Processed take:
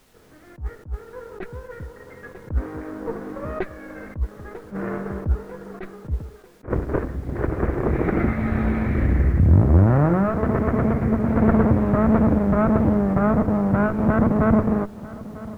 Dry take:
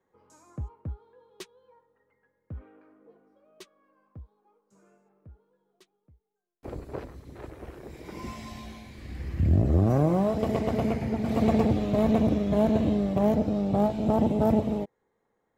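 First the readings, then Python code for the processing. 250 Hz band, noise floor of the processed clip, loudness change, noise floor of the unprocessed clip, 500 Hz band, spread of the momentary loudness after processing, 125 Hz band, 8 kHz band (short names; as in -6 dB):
+6.5 dB, -47 dBFS, +4.0 dB, -77 dBFS, +4.5 dB, 19 LU, +8.5 dB, n/a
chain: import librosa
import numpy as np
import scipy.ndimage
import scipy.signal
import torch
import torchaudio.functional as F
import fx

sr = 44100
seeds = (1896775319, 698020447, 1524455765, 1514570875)

p1 = fx.lower_of_two(x, sr, delay_ms=0.49)
p2 = fx.recorder_agc(p1, sr, target_db=-18.0, rise_db_per_s=14.0, max_gain_db=30)
p3 = scipy.signal.sosfilt(scipy.signal.butter(4, 1800.0, 'lowpass', fs=sr, output='sos'), p2)
p4 = fx.peak_eq(p3, sr, hz=870.0, db=-4.0, octaves=0.26)
p5 = fx.dmg_noise_colour(p4, sr, seeds[0], colour='pink', level_db=-65.0)
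p6 = p5 + fx.echo_feedback(p5, sr, ms=945, feedback_pct=54, wet_db=-18.5, dry=0)
p7 = fx.attack_slew(p6, sr, db_per_s=250.0)
y = F.gain(torch.from_numpy(p7), 7.5).numpy()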